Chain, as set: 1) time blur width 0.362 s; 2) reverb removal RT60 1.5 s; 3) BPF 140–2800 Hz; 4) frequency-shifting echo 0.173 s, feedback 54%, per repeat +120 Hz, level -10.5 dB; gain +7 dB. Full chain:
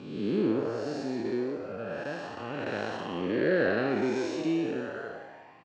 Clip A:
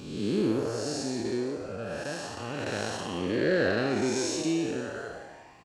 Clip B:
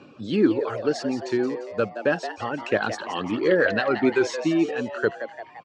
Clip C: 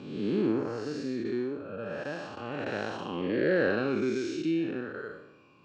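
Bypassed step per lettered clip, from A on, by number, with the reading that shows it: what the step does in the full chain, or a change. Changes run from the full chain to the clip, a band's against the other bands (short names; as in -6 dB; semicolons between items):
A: 3, 4 kHz band +6.5 dB; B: 1, 125 Hz band -4.0 dB; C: 4, echo-to-direct -9.0 dB to none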